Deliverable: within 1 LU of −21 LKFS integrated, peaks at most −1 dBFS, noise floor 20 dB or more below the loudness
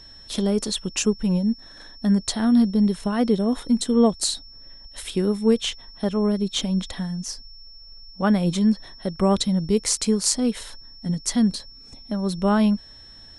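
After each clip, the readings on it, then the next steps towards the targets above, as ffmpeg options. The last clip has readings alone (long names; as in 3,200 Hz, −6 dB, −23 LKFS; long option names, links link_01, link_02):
interfering tone 5,400 Hz; level of the tone −44 dBFS; integrated loudness −22.5 LKFS; sample peak −3.5 dBFS; target loudness −21.0 LKFS
→ -af "bandreject=frequency=5400:width=30"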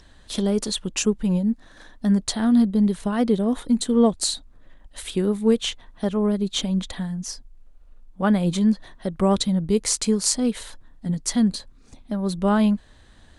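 interfering tone none found; integrated loudness −22.5 LKFS; sample peak −4.0 dBFS; target loudness −21.0 LKFS
→ -af "volume=1.5dB"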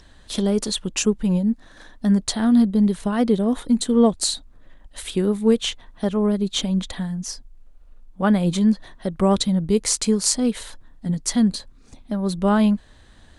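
integrated loudness −21.0 LKFS; sample peak −2.5 dBFS; background noise floor −50 dBFS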